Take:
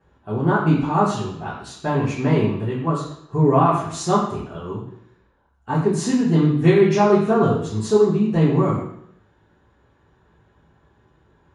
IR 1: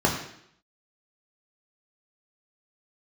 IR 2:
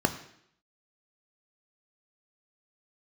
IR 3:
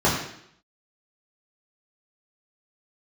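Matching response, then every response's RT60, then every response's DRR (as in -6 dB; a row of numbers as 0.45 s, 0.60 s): 3; 0.70 s, 0.70 s, 0.70 s; -1.5 dB, 7.5 dB, -7.5 dB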